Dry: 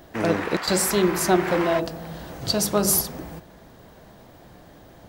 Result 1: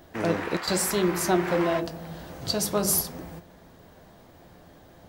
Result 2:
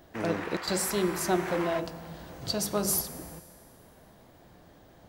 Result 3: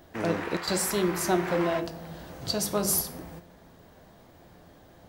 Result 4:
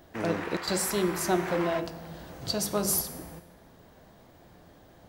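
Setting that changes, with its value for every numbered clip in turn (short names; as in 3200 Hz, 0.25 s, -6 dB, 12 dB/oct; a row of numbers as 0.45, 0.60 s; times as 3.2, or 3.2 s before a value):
resonator, decay: 0.16, 2.2, 0.42, 0.94 s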